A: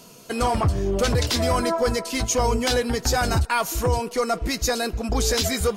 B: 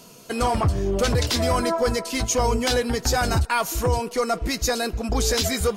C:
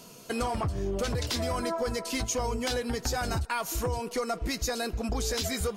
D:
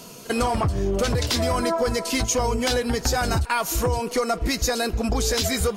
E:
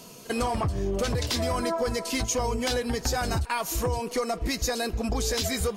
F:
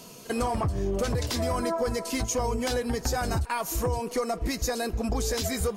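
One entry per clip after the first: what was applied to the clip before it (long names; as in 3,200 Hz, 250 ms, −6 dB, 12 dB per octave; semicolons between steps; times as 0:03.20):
no processing that can be heard
downward compressor 4 to 1, threshold −25 dBFS, peak gain reduction 8.5 dB; level −2.5 dB
backwards echo 45 ms −22 dB; level +7.5 dB
notch filter 1,400 Hz, Q 17; level −4.5 dB
dynamic equaliser 3,400 Hz, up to −5 dB, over −45 dBFS, Q 0.82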